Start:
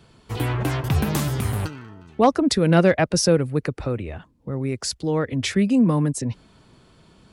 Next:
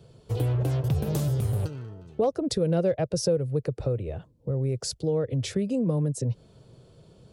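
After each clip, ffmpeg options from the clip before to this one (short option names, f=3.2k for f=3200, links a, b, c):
-af "equalizer=f=125:t=o:w=1:g=10,equalizer=f=250:t=o:w=1:g=-6,equalizer=f=500:t=o:w=1:g=11,equalizer=f=1k:t=o:w=1:g=-6,equalizer=f=2k:t=o:w=1:g=-8,acompressor=threshold=-21dB:ratio=2.5,volume=-4dB"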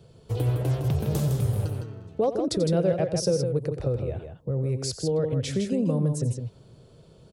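-af "aecho=1:1:88|159:0.211|0.473"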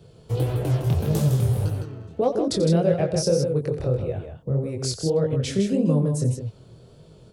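-af "flanger=delay=18.5:depth=7.2:speed=1.7,volume=6dB"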